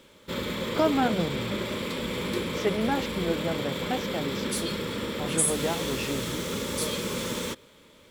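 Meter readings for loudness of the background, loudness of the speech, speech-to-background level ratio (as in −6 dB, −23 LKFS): −30.0 LKFS, −31.0 LKFS, −1.0 dB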